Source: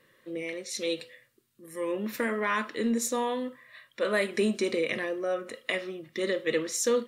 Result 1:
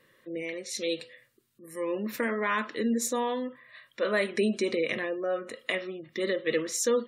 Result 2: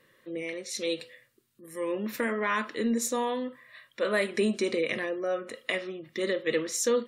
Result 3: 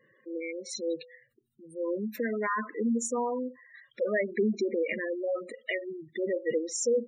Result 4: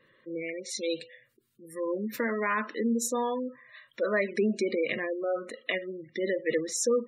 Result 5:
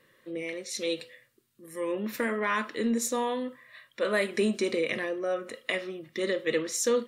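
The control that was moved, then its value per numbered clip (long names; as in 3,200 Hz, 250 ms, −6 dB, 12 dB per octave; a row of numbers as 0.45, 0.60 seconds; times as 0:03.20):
gate on every frequency bin, under each frame's peak: −35, −45, −10, −20, −60 decibels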